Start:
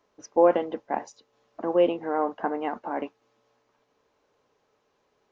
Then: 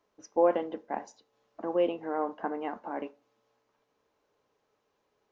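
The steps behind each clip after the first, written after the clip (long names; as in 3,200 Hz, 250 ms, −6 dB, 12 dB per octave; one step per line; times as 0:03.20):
convolution reverb RT60 0.40 s, pre-delay 3 ms, DRR 15 dB
level −5.5 dB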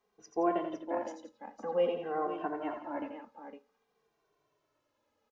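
multi-tap delay 85/171/508 ms −7/−13.5/−9.5 dB
barber-pole flanger 2.1 ms −0.52 Hz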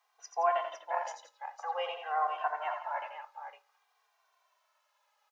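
Butterworth high-pass 710 Hz 36 dB per octave
level +7 dB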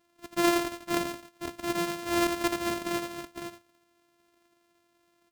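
samples sorted by size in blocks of 128 samples
in parallel at −6 dB: soft clipping −30 dBFS, distortion −10 dB
on the sum: level +2 dB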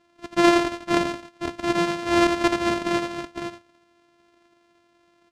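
high-frequency loss of the air 81 metres
level +8 dB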